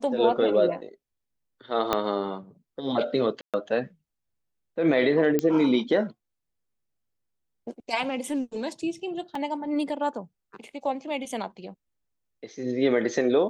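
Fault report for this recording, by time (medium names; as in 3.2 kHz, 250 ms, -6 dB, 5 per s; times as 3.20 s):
1.93 s: pop -9 dBFS
3.41–3.54 s: dropout 127 ms
5.39 s: pop -11 dBFS
9.35 s: dropout 3.7 ms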